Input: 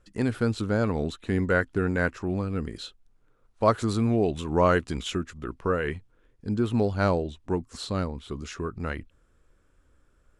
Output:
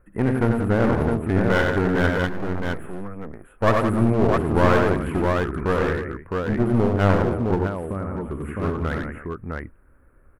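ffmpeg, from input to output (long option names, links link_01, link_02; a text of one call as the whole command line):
ffmpeg -i in.wav -filter_complex "[0:a]asettb=1/sr,asplit=3[link_01][link_02][link_03];[link_01]atrim=end=2.114[link_04];[link_02]atrim=start=2.11:end=2.78,asetpts=PTS-STARTPTS,afade=type=in:duration=0.004:curve=qsin,afade=type=out:start_time=0.666:duration=0.004:curve=qsin,aeval=exprs='max(val(0),0)':channel_layout=same[link_05];[link_03]atrim=start=2.776[link_06];[link_04][link_05]acrossfade=duration=0.004:curve1=hsin:curve2=qsin[link_07];[link_07][link_06]acrossfade=duration=0.004:curve1=qsin:curve2=hsin,aecho=1:1:61|92|105|177|308|660:0.282|0.596|0.1|0.355|0.133|0.596,asettb=1/sr,asplit=3[link_08][link_09][link_10];[link_08]atrim=end=7.664[link_11];[link_09]atrim=start=7.66:end=8.62,asetpts=PTS-STARTPTS,afade=type=in:duration=0.004:curve=qsin,afade=type=out:start_time=0.956:duration=0.004:curve=qsin,acompressor=threshold=-29dB:ratio=12[link_12];[link_10]atrim=start=8.616[link_13];[link_11][link_12]acrossfade=duration=0.004:curve1=hsin:curve2=qsin[link_14];[link_14][link_13]acrossfade=duration=0.004:curve1=qsin:curve2=hsin,asuperstop=centerf=4900:order=8:qfactor=0.62,aeval=exprs='clip(val(0),-1,0.0376)':channel_layout=same,volume=5.5dB" out.wav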